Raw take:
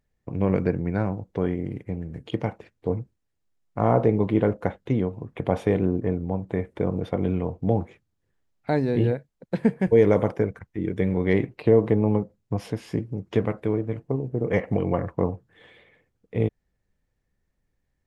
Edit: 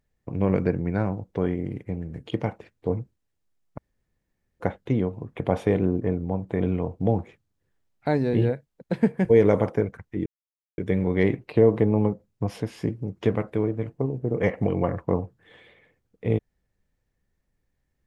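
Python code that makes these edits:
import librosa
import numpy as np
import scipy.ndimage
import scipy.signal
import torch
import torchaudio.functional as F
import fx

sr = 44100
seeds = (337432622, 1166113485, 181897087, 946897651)

y = fx.edit(x, sr, fx.room_tone_fill(start_s=3.78, length_s=0.82),
    fx.cut(start_s=6.6, length_s=0.62),
    fx.insert_silence(at_s=10.88, length_s=0.52), tone=tone)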